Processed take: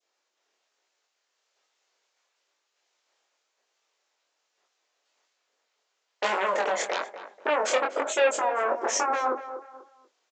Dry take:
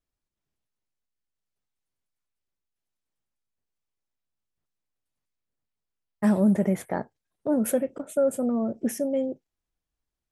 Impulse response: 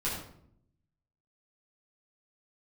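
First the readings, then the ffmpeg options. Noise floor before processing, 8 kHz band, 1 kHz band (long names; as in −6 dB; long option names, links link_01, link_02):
below −85 dBFS, +6.0 dB, +12.5 dB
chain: -filter_complex "[0:a]asplit=2[link_01][link_02];[link_02]acompressor=threshold=-34dB:ratio=6,volume=-1dB[link_03];[link_01][link_03]amix=inputs=2:normalize=0,aeval=exprs='0.282*(cos(1*acos(clip(val(0)/0.282,-1,1)))-cos(1*PI/2))+0.126*(cos(7*acos(clip(val(0)/0.282,-1,1)))-cos(7*PI/2))':channel_layout=same,aresample=16000,aresample=44100,alimiter=limit=-21.5dB:level=0:latency=1:release=68,asplit=2[link_04][link_05];[link_05]adelay=243,lowpass=frequency=1700:poles=1,volume=-11dB,asplit=2[link_06][link_07];[link_07]adelay=243,lowpass=frequency=1700:poles=1,volume=0.31,asplit=2[link_08][link_09];[link_09]adelay=243,lowpass=frequency=1700:poles=1,volume=0.31[link_10];[link_04][link_06][link_08][link_10]amix=inputs=4:normalize=0,adynamicequalizer=threshold=0.00501:dfrequency=1500:dqfactor=0.99:tfrequency=1500:tqfactor=0.99:attack=5:release=100:ratio=0.375:range=1.5:mode=cutabove:tftype=bell,flanger=delay=20:depth=5.3:speed=1.1,dynaudnorm=framelen=120:gausssize=11:maxgain=4dB,highpass=frequency=450:width=0.5412,highpass=frequency=450:width=1.3066,volume=7dB"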